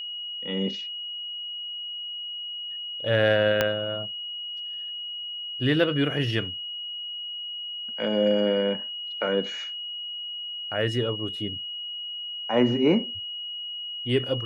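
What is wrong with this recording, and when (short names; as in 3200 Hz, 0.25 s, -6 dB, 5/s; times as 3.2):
tone 2900 Hz -32 dBFS
3.61 pop -7 dBFS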